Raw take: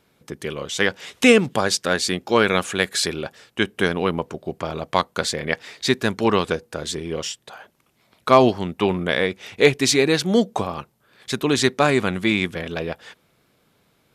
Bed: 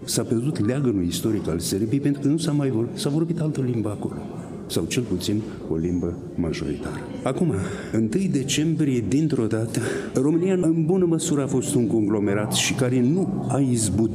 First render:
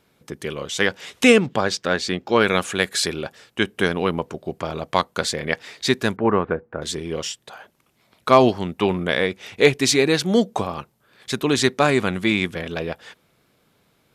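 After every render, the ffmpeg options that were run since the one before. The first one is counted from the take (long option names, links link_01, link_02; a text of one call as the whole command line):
ffmpeg -i in.wav -filter_complex "[0:a]asettb=1/sr,asplit=3[link_01][link_02][link_03];[link_01]atrim=end=1.394[link_04];[link_02]atrim=start=1.39:end=2.41,asetpts=PTS-STARTPTS,afade=type=in:duration=0.004:curve=qsin,afade=type=out:start_time=1.016:duration=0.004:curve=qsin,equalizer=frequency=11000:width_type=o:width=1.1:gain=-15[link_05];[link_03]atrim=start=2.406[link_06];[link_04][link_05]acrossfade=duration=0.004:curve1=hsin:curve2=qsin[link_07];[link_07][link_06]acrossfade=duration=0.004:curve1=qsin:curve2=hsin,asettb=1/sr,asplit=3[link_08][link_09][link_10];[link_08]atrim=end=6.164[link_11];[link_09]atrim=start=6.16:end=6.82,asetpts=PTS-STARTPTS,afade=type=in:duration=0.004:curve=qsin,afade=type=out:start_time=0.656:duration=0.004:curve=qsin,lowpass=frequency=1800:width=0.5412,lowpass=frequency=1800:width=1.3066[link_12];[link_10]atrim=start=6.816[link_13];[link_11][link_12]acrossfade=duration=0.004:curve1=hsin:curve2=qsin[link_14];[link_14][link_13]acrossfade=duration=0.004:curve1=qsin:curve2=hsin" out.wav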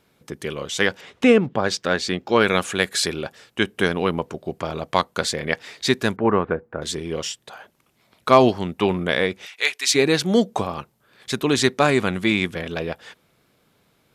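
ffmpeg -i in.wav -filter_complex "[0:a]asplit=3[link_01][link_02][link_03];[link_01]afade=type=out:start_time=1:duration=0.02[link_04];[link_02]lowpass=frequency=1400:poles=1,afade=type=in:start_time=1:duration=0.02,afade=type=out:start_time=1.63:duration=0.02[link_05];[link_03]afade=type=in:start_time=1.63:duration=0.02[link_06];[link_04][link_05][link_06]amix=inputs=3:normalize=0,asplit=3[link_07][link_08][link_09];[link_07]afade=type=out:start_time=9.45:duration=0.02[link_10];[link_08]highpass=1400,afade=type=in:start_time=9.45:duration=0.02,afade=type=out:start_time=9.94:duration=0.02[link_11];[link_09]afade=type=in:start_time=9.94:duration=0.02[link_12];[link_10][link_11][link_12]amix=inputs=3:normalize=0" out.wav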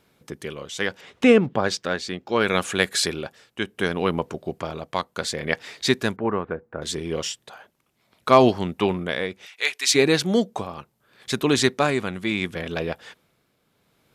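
ffmpeg -i in.wav -af "tremolo=f=0.7:d=0.52" out.wav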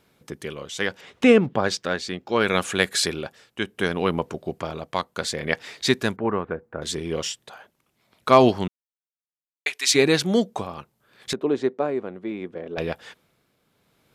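ffmpeg -i in.wav -filter_complex "[0:a]asettb=1/sr,asplit=3[link_01][link_02][link_03];[link_01]atrim=end=11.334[link_04];[link_02]atrim=start=11.33:end=12.78,asetpts=PTS-STARTPTS,afade=type=in:duration=0.004:curve=qsin,afade=type=out:start_time=1.446:duration=0.004:curve=qsin,bandpass=frequency=450:width_type=q:width=1.3[link_05];[link_03]atrim=start=12.776[link_06];[link_04][link_05]acrossfade=duration=0.004:curve1=hsin:curve2=qsin[link_07];[link_07][link_06]acrossfade=duration=0.004:curve1=qsin:curve2=hsin,asplit=3[link_08][link_09][link_10];[link_08]atrim=end=8.68,asetpts=PTS-STARTPTS,afade=type=out:start_time=8.676:duration=0.004:curve=hsin[link_11];[link_09]atrim=start=8.68:end=9.66,asetpts=PTS-STARTPTS,volume=0[link_12];[link_10]atrim=start=9.66,asetpts=PTS-STARTPTS,afade=type=in:duration=0.004:curve=hsin[link_13];[link_11][link_12][link_13]concat=n=3:v=0:a=1" out.wav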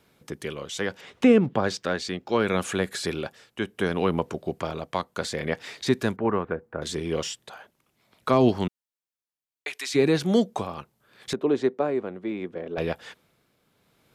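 ffmpeg -i in.wav -filter_complex "[0:a]acrossover=split=390[link_01][link_02];[link_02]acompressor=threshold=-21dB:ratio=5[link_03];[link_01][link_03]amix=inputs=2:normalize=0,acrossover=split=1400[link_04][link_05];[link_05]alimiter=limit=-24dB:level=0:latency=1:release=15[link_06];[link_04][link_06]amix=inputs=2:normalize=0" out.wav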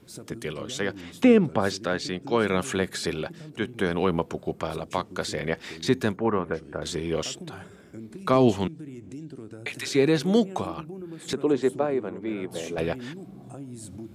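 ffmpeg -i in.wav -i bed.wav -filter_complex "[1:a]volume=-19dB[link_01];[0:a][link_01]amix=inputs=2:normalize=0" out.wav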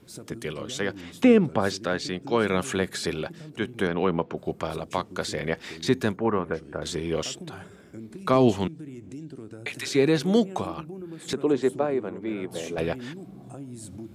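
ffmpeg -i in.wav -filter_complex "[0:a]asettb=1/sr,asplit=3[link_01][link_02][link_03];[link_01]atrim=end=3.874[link_04];[link_02]atrim=start=3.87:end=4.37,asetpts=PTS-STARTPTS,afade=type=in:duration=0.004:curve=qsin,afade=type=out:start_time=0.496:duration=0.004:curve=qsin,highpass=110,lowpass=3200[link_05];[link_03]atrim=start=4.366[link_06];[link_04][link_05]acrossfade=duration=0.004:curve1=hsin:curve2=qsin[link_07];[link_07][link_06]acrossfade=duration=0.004:curve1=qsin:curve2=hsin" out.wav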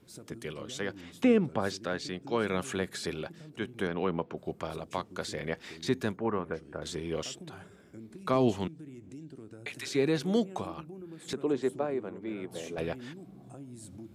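ffmpeg -i in.wav -af "volume=-6.5dB" out.wav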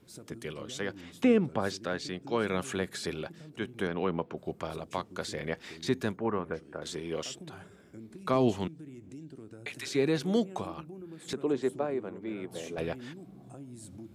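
ffmpeg -i in.wav -filter_complex "[0:a]asettb=1/sr,asplit=3[link_01][link_02][link_03];[link_01]atrim=end=6.604[link_04];[link_02]atrim=start=6.6:end=7.3,asetpts=PTS-STARTPTS,afade=type=in:duration=0.004:curve=qsin,afade=type=out:start_time=0.696:duration=0.004:curve=qsin,highpass=frequency=170:poles=1[link_05];[link_03]atrim=start=7.296[link_06];[link_04][link_05]acrossfade=duration=0.004:curve1=hsin:curve2=qsin[link_07];[link_07][link_06]acrossfade=duration=0.004:curve1=qsin:curve2=hsin" out.wav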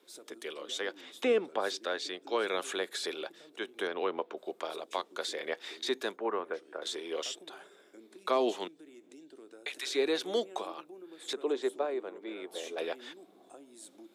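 ffmpeg -i in.wav -af "highpass=frequency=350:width=0.5412,highpass=frequency=350:width=1.3066,equalizer=frequency=3600:width_type=o:width=0.25:gain=8" out.wav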